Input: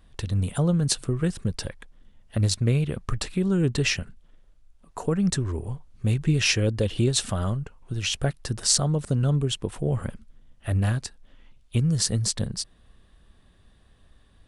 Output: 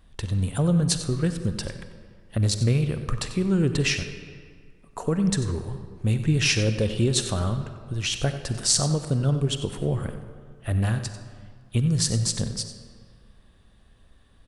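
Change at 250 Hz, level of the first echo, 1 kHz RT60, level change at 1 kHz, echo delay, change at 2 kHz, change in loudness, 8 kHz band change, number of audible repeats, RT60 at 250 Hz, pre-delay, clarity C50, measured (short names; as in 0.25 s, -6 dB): +1.0 dB, -13.5 dB, 1.9 s, +0.5 dB, 93 ms, +0.5 dB, +0.5 dB, +0.5 dB, 1, 1.9 s, 39 ms, 8.5 dB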